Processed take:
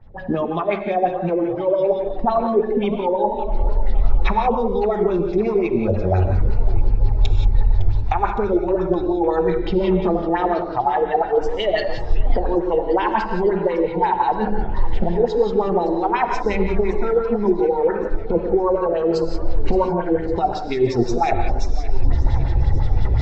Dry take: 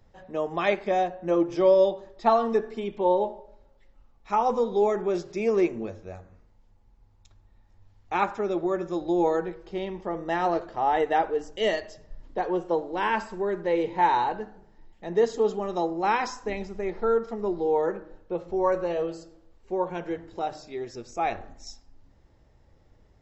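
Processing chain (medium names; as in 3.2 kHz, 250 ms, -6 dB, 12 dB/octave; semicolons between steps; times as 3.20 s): recorder AGC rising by 62 dB/s; spectral noise reduction 9 dB; hum notches 50/100/150/200 Hz; reverse; compression 6:1, threshold -32 dBFS, peak gain reduction 16 dB; reverse; tone controls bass +13 dB, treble +2 dB; LFO low-pass sine 5.7 Hz 380–3900 Hz; peaking EQ 830 Hz +5.5 dB 1.2 oct; gated-style reverb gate 200 ms rising, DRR 5.5 dB; modulated delay 562 ms, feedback 66%, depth 191 cents, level -17 dB; trim +7 dB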